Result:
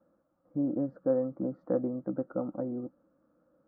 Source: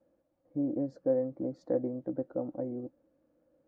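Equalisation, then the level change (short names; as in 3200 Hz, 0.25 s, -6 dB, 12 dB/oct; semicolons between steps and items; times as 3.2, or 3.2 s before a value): synth low-pass 1300 Hz, resonance Q 6.1; bell 190 Hz +9.5 dB 0.67 oct; -1.5 dB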